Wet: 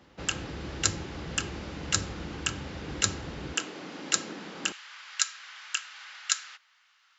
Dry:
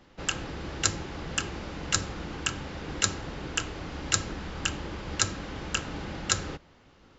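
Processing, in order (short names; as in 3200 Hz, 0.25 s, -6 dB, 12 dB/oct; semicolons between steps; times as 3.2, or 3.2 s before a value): HPF 47 Hz 24 dB/oct, from 3.54 s 200 Hz, from 4.72 s 1300 Hz; dynamic EQ 920 Hz, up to -3 dB, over -45 dBFS, Q 0.75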